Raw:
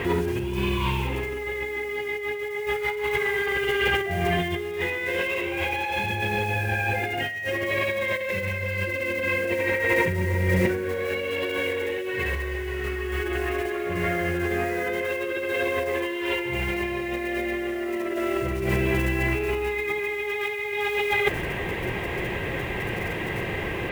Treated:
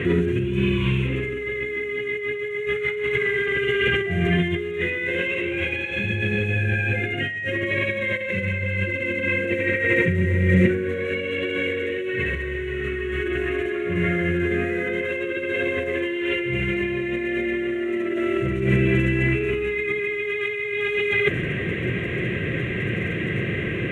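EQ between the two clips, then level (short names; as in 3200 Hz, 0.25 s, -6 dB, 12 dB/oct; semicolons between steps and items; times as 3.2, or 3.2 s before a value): Chebyshev band-pass 130–5200 Hz, order 2; low shelf 340 Hz +6.5 dB; fixed phaser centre 2100 Hz, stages 4; +3.5 dB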